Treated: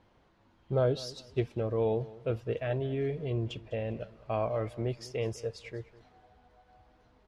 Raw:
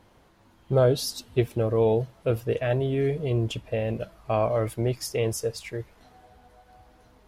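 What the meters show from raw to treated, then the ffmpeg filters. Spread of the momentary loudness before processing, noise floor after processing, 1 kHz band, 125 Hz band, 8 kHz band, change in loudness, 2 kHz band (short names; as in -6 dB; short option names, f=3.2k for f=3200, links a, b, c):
9 LU, -66 dBFS, -7.0 dB, -7.0 dB, under -10 dB, -7.0 dB, -7.0 dB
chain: -af "lowpass=4.9k,aecho=1:1:202|404:0.112|0.0314,volume=-7dB"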